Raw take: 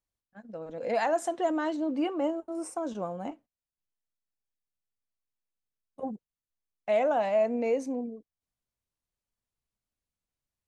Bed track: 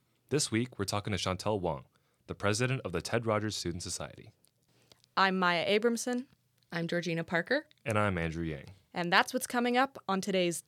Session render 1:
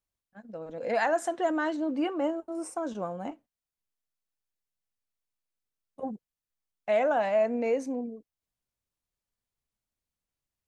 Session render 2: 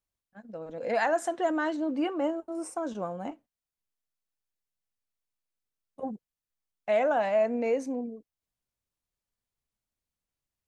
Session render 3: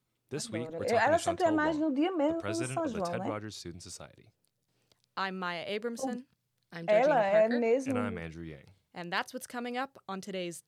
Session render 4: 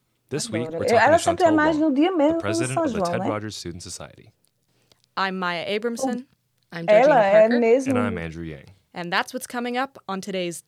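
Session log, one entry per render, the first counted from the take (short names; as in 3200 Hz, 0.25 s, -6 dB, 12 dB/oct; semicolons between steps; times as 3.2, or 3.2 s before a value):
dynamic EQ 1600 Hz, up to +6 dB, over -49 dBFS, Q 2.3
nothing audible
add bed track -7.5 dB
gain +10 dB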